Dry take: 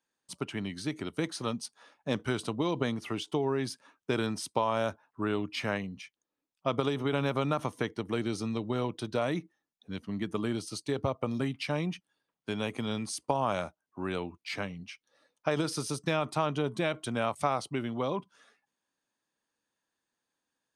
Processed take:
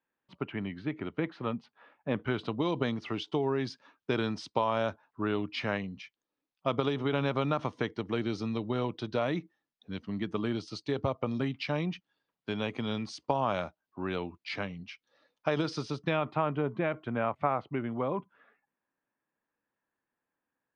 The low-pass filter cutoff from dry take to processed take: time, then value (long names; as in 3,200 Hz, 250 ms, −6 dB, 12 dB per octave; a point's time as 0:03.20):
low-pass filter 24 dB per octave
0:02.15 2,700 Hz
0:02.64 5,000 Hz
0:15.77 5,000 Hz
0:16.52 2,300 Hz